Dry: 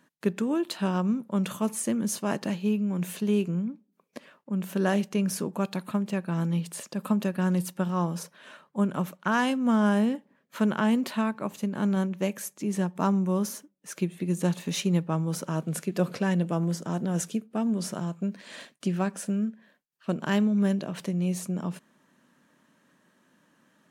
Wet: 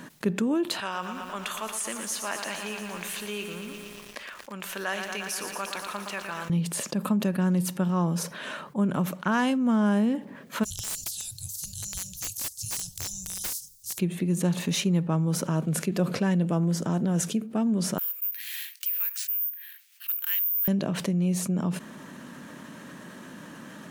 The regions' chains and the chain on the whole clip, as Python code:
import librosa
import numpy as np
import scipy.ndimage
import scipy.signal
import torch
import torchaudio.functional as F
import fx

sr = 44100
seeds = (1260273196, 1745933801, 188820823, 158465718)

y = fx.chain(x, sr, fx.highpass(hz=1400.0, slope=12),
    fx.tilt_eq(slope=-2.0),
    fx.echo_crushed(ms=116, feedback_pct=80, bits=10, wet_db=-9.5), at=(0.8, 6.5))
y = fx.spec_clip(y, sr, under_db=23, at=(10.63, 13.98), fade=0.02)
y = fx.cheby2_bandstop(y, sr, low_hz=220.0, high_hz=2200.0, order=4, stop_db=50, at=(10.63, 13.98), fade=0.02)
y = fx.overflow_wrap(y, sr, gain_db=31.0, at=(10.63, 13.98), fade=0.02)
y = fx.chain(y, sr, fx.resample_bad(factor=3, down='none', up='zero_stuff'),
    fx.ladder_highpass(hz=1800.0, resonance_pct=35), at=(17.98, 20.68))
y = fx.low_shelf(y, sr, hz=290.0, db=4.5)
y = fx.env_flatten(y, sr, amount_pct=50)
y = F.gain(torch.from_numpy(y), -3.5).numpy()